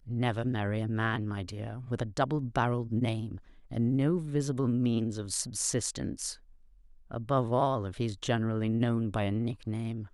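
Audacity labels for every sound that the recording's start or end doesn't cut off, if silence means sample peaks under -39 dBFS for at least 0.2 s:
3.710000	6.340000	sound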